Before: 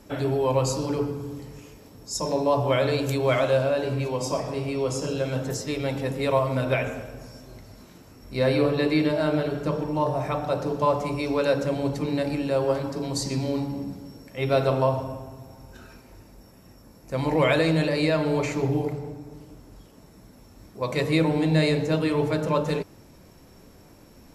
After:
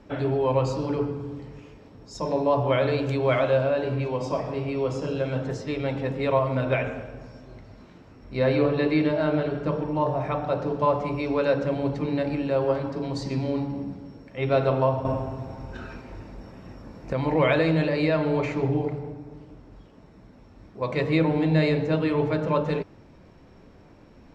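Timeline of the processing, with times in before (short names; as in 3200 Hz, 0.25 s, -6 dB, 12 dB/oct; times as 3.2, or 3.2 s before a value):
15.05–17.13 gain +8.5 dB
whole clip: LPF 3200 Hz 12 dB/oct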